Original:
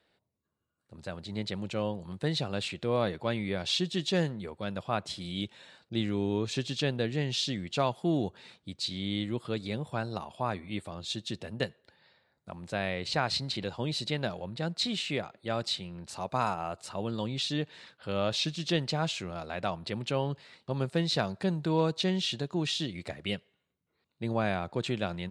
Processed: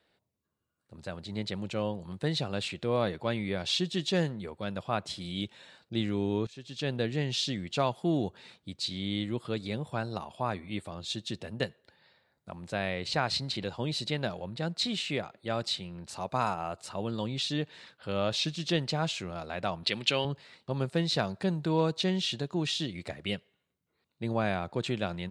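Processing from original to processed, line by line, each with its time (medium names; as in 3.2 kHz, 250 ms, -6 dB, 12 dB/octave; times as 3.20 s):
6.47–6.94 s: fade in quadratic, from -17 dB
19.83–20.25 s: frequency weighting D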